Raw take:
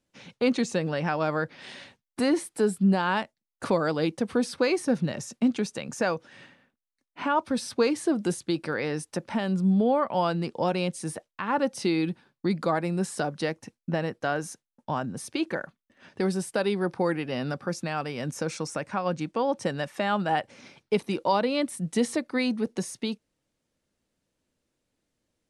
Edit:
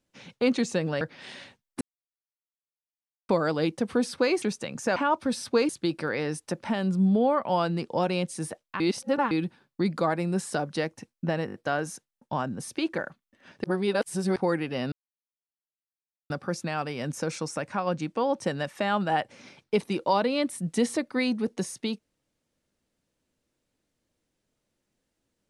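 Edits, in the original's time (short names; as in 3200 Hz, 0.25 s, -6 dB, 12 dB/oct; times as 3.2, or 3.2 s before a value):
1.01–1.41 cut
2.21–3.69 mute
4.82–5.56 cut
6.1–7.21 cut
7.94–8.34 cut
11.45–11.96 reverse
14.11 stutter 0.02 s, 5 plays
16.21–16.93 reverse
17.49 insert silence 1.38 s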